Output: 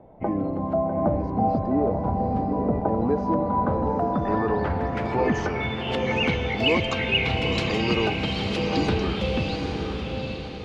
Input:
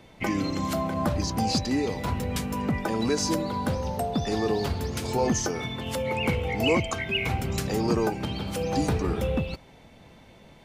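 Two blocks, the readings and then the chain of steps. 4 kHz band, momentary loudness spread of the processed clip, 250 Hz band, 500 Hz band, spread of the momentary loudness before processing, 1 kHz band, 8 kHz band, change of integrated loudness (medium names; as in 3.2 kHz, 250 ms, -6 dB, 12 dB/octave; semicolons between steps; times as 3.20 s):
+4.5 dB, 5 LU, +2.5 dB, +3.5 dB, 5 LU, +5.0 dB, -14.0 dB, +3.0 dB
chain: low-pass sweep 710 Hz -> 3.8 kHz, 2.86–6.46 s; echo that smears into a reverb 829 ms, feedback 44%, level -4 dB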